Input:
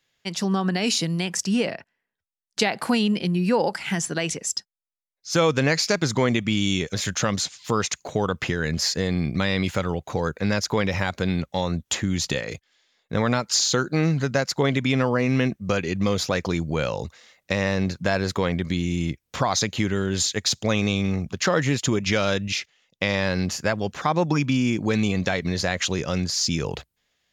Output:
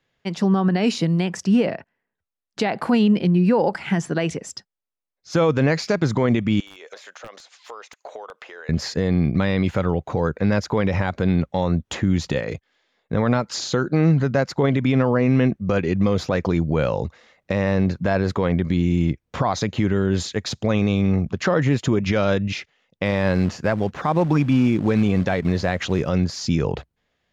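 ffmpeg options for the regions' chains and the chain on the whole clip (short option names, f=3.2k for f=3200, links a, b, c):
-filter_complex "[0:a]asettb=1/sr,asplit=3[a][b][c];[a]atrim=end=6.604[d];[b]atrim=start=6.6:end=8.69,asetpts=PTS-STARTPTS,afade=t=in:d=0.004:c=qsin,afade=t=out:st=2.086:d=0.004:c=qsin,highpass=f=510:w=0.5412,highpass=f=510:w=1.3066,aeval=exprs='(mod(5.01*val(0)+1,2)-1)/5.01':c=same,acompressor=threshold=-36dB:ratio=12:attack=3.2:release=140:knee=1:detection=peak[e];[c]atrim=start=8.686[f];[d][e]acrossfade=d=0.004:c1=hsin:c2=qsin[g];[g][f]acrossfade=d=0.004:c1=qsin:c2=hsin,asettb=1/sr,asplit=3[h][i][j];[h]atrim=end=23.054[k];[i]atrim=start=23.05:end=26.08,asetpts=PTS-STARTPTS,afade=t=in:d=0.004:c=qsin,afade=t=out:st=3.026:d=0.004:c=qsin,acrusher=bits=4:mode=log:mix=0:aa=0.000001,acrossover=split=8400[l][m];[m]acompressor=threshold=-50dB:ratio=4:attack=1:release=60[n];[l][n]amix=inputs=2:normalize=0[o];[j]atrim=start=26.076[p];[k][o]acrossfade=d=0.004:c1=hsin:c2=qsin[q];[q][p]acrossfade=d=0.004:c1=qsin:c2=hsin,lowpass=f=1.1k:p=1,alimiter=level_in=14.5dB:limit=-1dB:release=50:level=0:latency=1,volume=-8.5dB"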